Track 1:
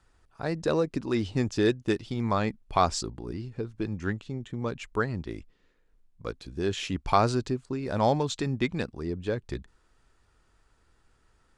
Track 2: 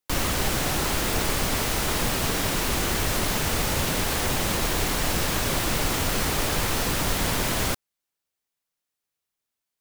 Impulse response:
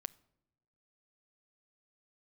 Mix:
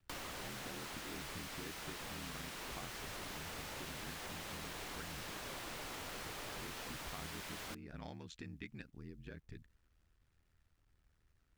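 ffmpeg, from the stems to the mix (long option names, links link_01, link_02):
-filter_complex "[0:a]equalizer=frequency=500:width_type=o:width=1:gain=-9,equalizer=frequency=1000:width_type=o:width=1:gain=-12,equalizer=frequency=4000:width_type=o:width=1:gain=-8,equalizer=frequency=8000:width_type=o:width=1:gain=-11,acrusher=bits=11:mix=0:aa=0.000001,aeval=exprs='val(0)*sin(2*PI*40*n/s)':channel_layout=same,volume=-5.5dB[link_01];[1:a]lowshelf=frequency=260:gain=-10.5,volume=-13.5dB,asplit=2[link_02][link_03];[link_03]volume=-7dB[link_04];[2:a]atrim=start_sample=2205[link_05];[link_04][link_05]afir=irnorm=-1:irlink=0[link_06];[link_01][link_02][link_06]amix=inputs=3:normalize=0,acrossover=split=1100|4600[link_07][link_08][link_09];[link_07]acompressor=threshold=-48dB:ratio=4[link_10];[link_08]acompressor=threshold=-49dB:ratio=4[link_11];[link_09]acompressor=threshold=-51dB:ratio=4[link_12];[link_10][link_11][link_12]amix=inputs=3:normalize=0,highshelf=frequency=7400:gain=-4"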